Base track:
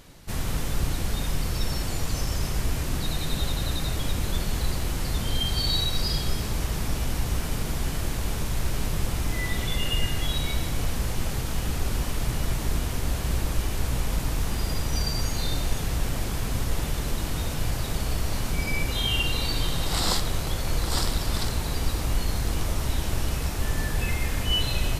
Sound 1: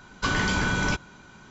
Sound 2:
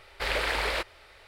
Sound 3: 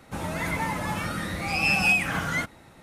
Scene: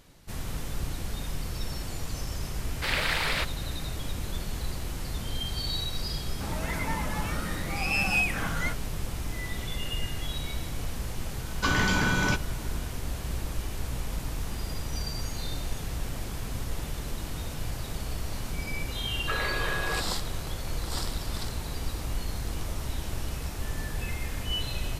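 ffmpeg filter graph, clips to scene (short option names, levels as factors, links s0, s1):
-filter_complex "[1:a]asplit=2[s0][s1];[0:a]volume=0.473[s2];[2:a]tiltshelf=f=680:g=-6[s3];[s1]highpass=f=250:t=q:w=0.5412,highpass=f=250:t=q:w=1.307,lowpass=f=2700:t=q:w=0.5176,lowpass=f=2700:t=q:w=0.7071,lowpass=f=2700:t=q:w=1.932,afreqshift=170[s4];[s3]atrim=end=1.27,asetpts=PTS-STARTPTS,volume=0.668,afade=t=in:d=0.004:c=hsin,afade=t=out:st=1.266:d=0.004:c=hsin,adelay=2620[s5];[3:a]atrim=end=2.82,asetpts=PTS-STARTPTS,volume=0.596,afade=t=in:d=0.004:c=hsin,afade=t=out:st=2.816:d=0.004:c=hsin,adelay=6280[s6];[s0]atrim=end=1.5,asetpts=PTS-STARTPTS,volume=0.944,afade=t=in:d=0.004:c=hsin,afade=t=out:st=1.496:d=0.004:c=hsin,adelay=11400[s7];[s4]atrim=end=1.5,asetpts=PTS-STARTPTS,volume=0.596,afade=t=in:d=0.004:c=hsin,afade=t=out:st=1.496:d=0.004:c=hsin,adelay=19050[s8];[s2][s5][s6][s7][s8]amix=inputs=5:normalize=0"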